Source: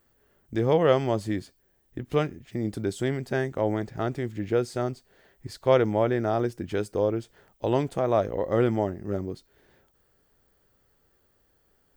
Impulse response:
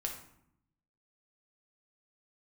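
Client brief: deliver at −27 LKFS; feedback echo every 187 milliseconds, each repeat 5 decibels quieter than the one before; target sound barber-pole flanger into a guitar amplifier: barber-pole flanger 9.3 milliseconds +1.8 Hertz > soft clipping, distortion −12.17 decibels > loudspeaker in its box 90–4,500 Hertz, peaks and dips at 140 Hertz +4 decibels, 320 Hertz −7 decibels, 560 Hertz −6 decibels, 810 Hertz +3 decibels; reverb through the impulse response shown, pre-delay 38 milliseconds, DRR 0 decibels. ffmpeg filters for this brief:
-filter_complex "[0:a]aecho=1:1:187|374|561|748|935|1122|1309:0.562|0.315|0.176|0.0988|0.0553|0.031|0.0173,asplit=2[link_01][link_02];[1:a]atrim=start_sample=2205,adelay=38[link_03];[link_02][link_03]afir=irnorm=-1:irlink=0,volume=-1dB[link_04];[link_01][link_04]amix=inputs=2:normalize=0,asplit=2[link_05][link_06];[link_06]adelay=9.3,afreqshift=1.8[link_07];[link_05][link_07]amix=inputs=2:normalize=1,asoftclip=threshold=-20dB,highpass=90,equalizer=frequency=140:width_type=q:width=4:gain=4,equalizer=frequency=320:width_type=q:width=4:gain=-7,equalizer=frequency=560:width_type=q:width=4:gain=-6,equalizer=frequency=810:width_type=q:width=4:gain=3,lowpass=frequency=4500:width=0.5412,lowpass=frequency=4500:width=1.3066,volume=3.5dB"

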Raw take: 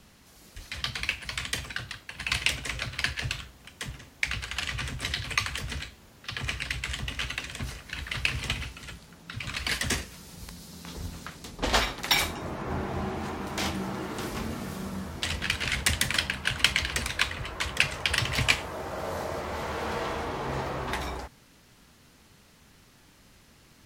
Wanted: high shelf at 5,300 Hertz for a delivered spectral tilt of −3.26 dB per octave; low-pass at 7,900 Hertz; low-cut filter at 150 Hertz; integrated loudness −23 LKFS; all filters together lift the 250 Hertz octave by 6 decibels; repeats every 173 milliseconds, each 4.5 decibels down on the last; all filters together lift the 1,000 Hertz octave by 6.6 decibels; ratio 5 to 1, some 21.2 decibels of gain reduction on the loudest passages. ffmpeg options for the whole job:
ffmpeg -i in.wav -af "highpass=150,lowpass=7900,equalizer=frequency=250:width_type=o:gain=8.5,equalizer=frequency=1000:width_type=o:gain=7.5,highshelf=frequency=5300:gain=3,acompressor=threshold=-41dB:ratio=5,aecho=1:1:173|346|519|692|865|1038|1211|1384|1557:0.596|0.357|0.214|0.129|0.0772|0.0463|0.0278|0.0167|0.01,volume=18dB" out.wav

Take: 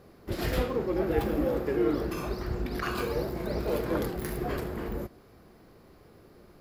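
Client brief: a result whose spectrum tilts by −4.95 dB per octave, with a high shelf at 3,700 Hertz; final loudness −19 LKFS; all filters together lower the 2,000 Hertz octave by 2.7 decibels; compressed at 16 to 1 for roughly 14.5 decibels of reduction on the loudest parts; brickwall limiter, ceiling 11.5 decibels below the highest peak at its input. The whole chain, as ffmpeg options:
ffmpeg -i in.wav -af "equalizer=frequency=2000:width_type=o:gain=-6,highshelf=frequency=3700:gain=9,acompressor=threshold=-36dB:ratio=16,volume=24.5dB,alimiter=limit=-9.5dB:level=0:latency=1" out.wav

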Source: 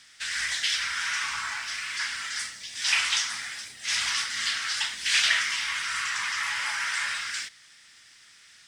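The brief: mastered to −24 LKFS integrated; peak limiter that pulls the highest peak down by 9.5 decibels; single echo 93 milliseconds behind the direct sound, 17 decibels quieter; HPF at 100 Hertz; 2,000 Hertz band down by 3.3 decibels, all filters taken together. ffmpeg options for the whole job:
ffmpeg -i in.wav -af "highpass=100,equalizer=frequency=2000:width_type=o:gain=-4,alimiter=limit=-21dB:level=0:latency=1,aecho=1:1:93:0.141,volume=6dB" out.wav

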